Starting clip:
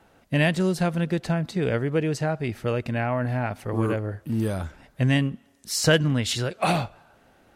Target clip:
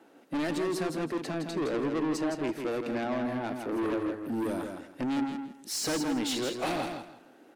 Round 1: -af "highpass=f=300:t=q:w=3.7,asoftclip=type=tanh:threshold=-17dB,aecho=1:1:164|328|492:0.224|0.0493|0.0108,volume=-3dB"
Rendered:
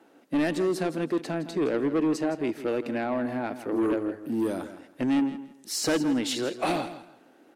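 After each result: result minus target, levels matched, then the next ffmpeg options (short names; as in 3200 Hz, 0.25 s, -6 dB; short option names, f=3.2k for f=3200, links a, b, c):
echo-to-direct -7 dB; soft clip: distortion -5 dB
-af "highpass=f=300:t=q:w=3.7,asoftclip=type=tanh:threshold=-17dB,aecho=1:1:164|328|492:0.501|0.11|0.0243,volume=-3dB"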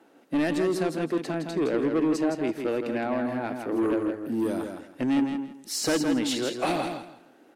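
soft clip: distortion -5 dB
-af "highpass=f=300:t=q:w=3.7,asoftclip=type=tanh:threshold=-25dB,aecho=1:1:164|328|492:0.501|0.11|0.0243,volume=-3dB"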